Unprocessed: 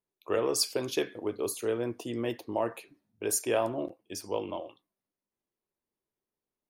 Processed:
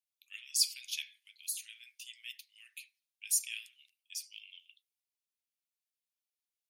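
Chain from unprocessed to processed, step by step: steep high-pass 2.3 kHz 48 dB/octave

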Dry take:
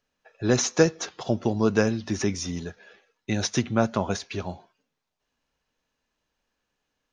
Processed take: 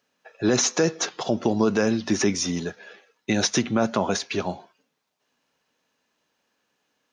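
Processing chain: high-pass 170 Hz 12 dB/octave; peak limiter -17 dBFS, peak gain reduction 11 dB; trim +6.5 dB

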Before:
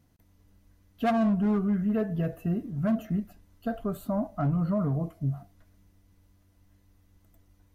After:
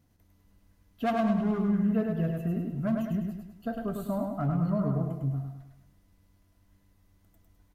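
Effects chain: on a send: feedback delay 103 ms, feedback 45%, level -4 dB; on the sum: trim -2.5 dB

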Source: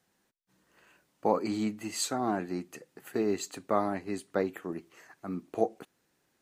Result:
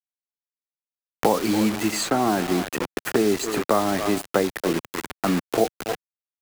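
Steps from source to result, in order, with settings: speakerphone echo 280 ms, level -13 dB; in parallel at +3 dB: compression 10:1, threshold -39 dBFS, peak gain reduction 19.5 dB; on the sum: word length cut 6-bit, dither none; three bands compressed up and down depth 70%; trim +6.5 dB

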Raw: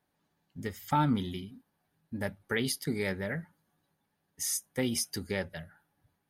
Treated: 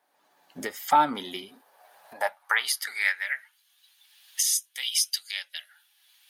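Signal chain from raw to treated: recorder AGC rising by 22 dB/s; resonant low shelf 470 Hz -12.5 dB, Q 1.5; high-pass sweep 300 Hz -> 3.2 kHz, 1.33–3.64 s; trim +6 dB

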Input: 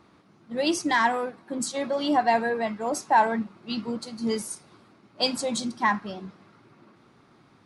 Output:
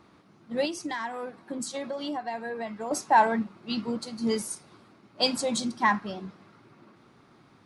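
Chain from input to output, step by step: 0.65–2.91 s: compression 6:1, threshold -31 dBFS, peak gain reduction 13.5 dB

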